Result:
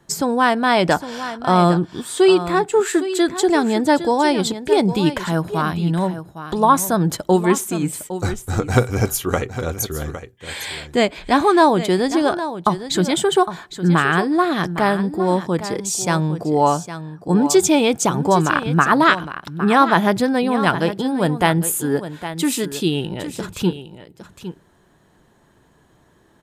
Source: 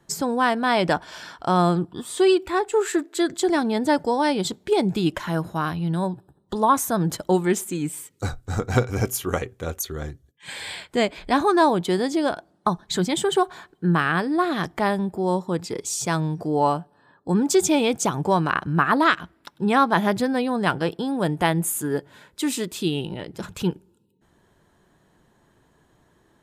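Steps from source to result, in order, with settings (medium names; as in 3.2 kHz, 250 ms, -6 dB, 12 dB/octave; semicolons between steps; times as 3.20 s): delay 809 ms -12 dB; trim +4.5 dB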